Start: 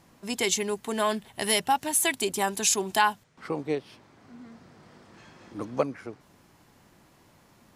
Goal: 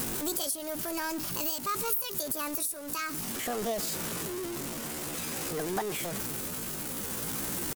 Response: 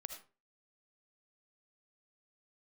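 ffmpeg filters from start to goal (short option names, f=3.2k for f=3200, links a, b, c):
-filter_complex "[0:a]aeval=exprs='val(0)+0.5*0.0531*sgn(val(0))':c=same,bass=f=250:g=5,treble=f=4k:g=13,acompressor=threshold=-20dB:ratio=20,tremolo=f=0.52:d=0.29,asetrate=66075,aresample=44100,atempo=0.66742,asplit=2[a][b];[b]aecho=0:1:121:0.075[c];[a][c]amix=inputs=2:normalize=0,volume=-6dB"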